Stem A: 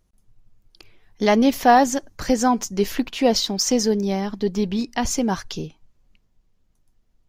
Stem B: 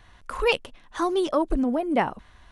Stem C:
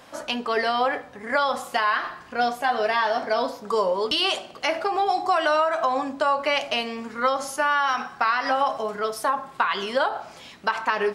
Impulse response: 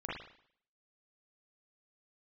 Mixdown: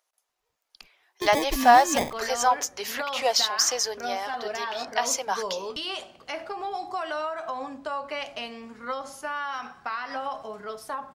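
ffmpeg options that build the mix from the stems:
-filter_complex "[0:a]highpass=f=630:w=0.5412,highpass=f=630:w=1.3066,volume=1,asplit=2[s0][s1];[1:a]acrusher=samples=31:mix=1:aa=0.000001,volume=0.562[s2];[2:a]lowshelf=f=94:g=11,adelay=1650,volume=0.316[s3];[s1]apad=whole_len=111043[s4];[s2][s4]sidechaingate=range=0.00141:threshold=0.00282:ratio=16:detection=peak[s5];[s0][s5][s3]amix=inputs=3:normalize=0"

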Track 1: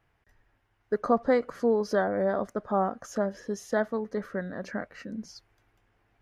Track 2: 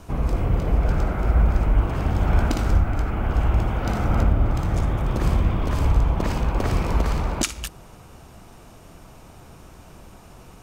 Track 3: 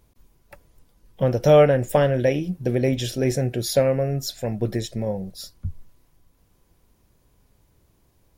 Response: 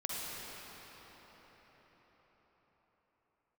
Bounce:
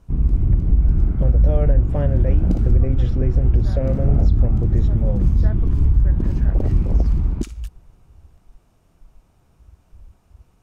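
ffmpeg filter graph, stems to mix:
-filter_complex "[0:a]adelay=1700,volume=0.398[s0];[1:a]lowshelf=f=150:g=7.5,afwtdn=0.126,volume=0.944[s1];[2:a]lowpass=f=1700:p=1,aemphasis=mode=reproduction:type=bsi,alimiter=limit=0.237:level=0:latency=1:release=141,volume=0.708,asplit=2[s2][s3];[s3]apad=whole_len=349182[s4];[s0][s4]sidechaincompress=threshold=0.0178:ratio=8:attack=16:release=213[s5];[s5][s1][s2]amix=inputs=3:normalize=0,alimiter=limit=0.473:level=0:latency=1:release=123"

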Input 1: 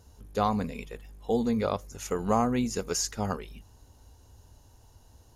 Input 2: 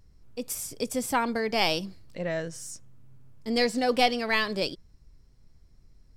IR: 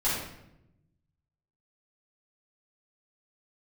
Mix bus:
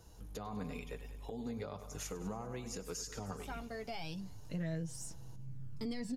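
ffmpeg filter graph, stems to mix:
-filter_complex "[0:a]acompressor=threshold=0.02:ratio=5,volume=1.33,asplit=3[s0][s1][s2];[s1]volume=0.211[s3];[1:a]equalizer=f=120:t=o:w=2.5:g=7.5,aphaser=in_gain=1:out_gain=1:delay=1.6:decay=0.45:speed=0.36:type=triangular,adelay=2350,volume=1.41[s4];[s2]apad=whole_len=375572[s5];[s4][s5]sidechaincompress=threshold=0.002:ratio=8:attack=23:release=827[s6];[s3]aecho=0:1:99|198|297|396|495|594|693|792|891:1|0.57|0.325|0.185|0.106|0.0602|0.0343|0.0195|0.0111[s7];[s0][s6][s7]amix=inputs=3:normalize=0,acrossover=split=240[s8][s9];[s9]acompressor=threshold=0.0178:ratio=3[s10];[s8][s10]amix=inputs=2:normalize=0,flanger=delay=6:depth=1.3:regen=-30:speed=0.39:shape=triangular,alimiter=level_in=2.37:limit=0.0631:level=0:latency=1:release=189,volume=0.422"

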